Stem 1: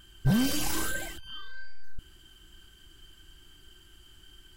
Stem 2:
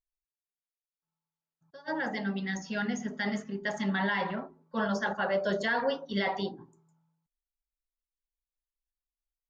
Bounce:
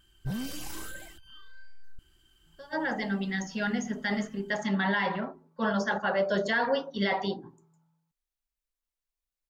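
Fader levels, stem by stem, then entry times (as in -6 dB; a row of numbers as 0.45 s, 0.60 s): -9.5 dB, +2.0 dB; 0.00 s, 0.85 s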